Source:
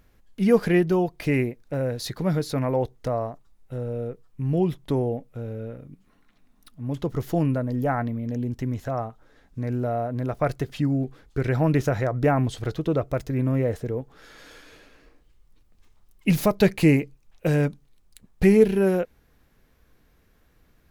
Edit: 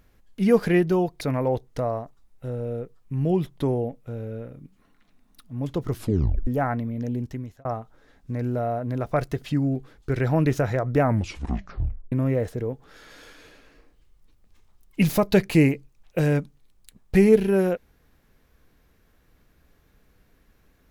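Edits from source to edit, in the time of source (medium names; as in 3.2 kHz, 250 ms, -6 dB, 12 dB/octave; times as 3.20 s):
1.21–2.49 s: delete
7.18 s: tape stop 0.57 s
8.45–8.93 s: fade out
12.27 s: tape stop 1.13 s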